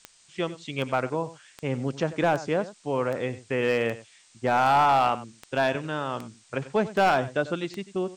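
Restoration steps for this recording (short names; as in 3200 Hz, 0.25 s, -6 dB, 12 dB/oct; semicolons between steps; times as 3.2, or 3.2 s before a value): clip repair -15 dBFS; de-click; denoiser 13 dB, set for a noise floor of -57 dBFS; inverse comb 94 ms -16 dB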